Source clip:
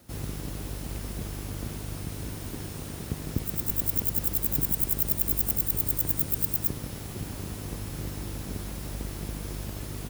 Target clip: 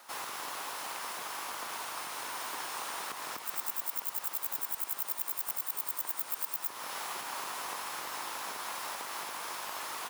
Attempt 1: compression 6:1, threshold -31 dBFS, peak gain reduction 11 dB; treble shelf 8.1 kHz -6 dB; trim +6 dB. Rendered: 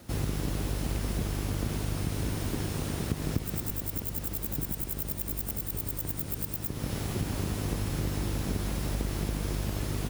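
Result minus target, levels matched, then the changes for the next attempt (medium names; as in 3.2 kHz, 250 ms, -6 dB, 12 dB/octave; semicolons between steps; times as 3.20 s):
1 kHz band -9.0 dB
add after compression: resonant high-pass 990 Hz, resonance Q 2.6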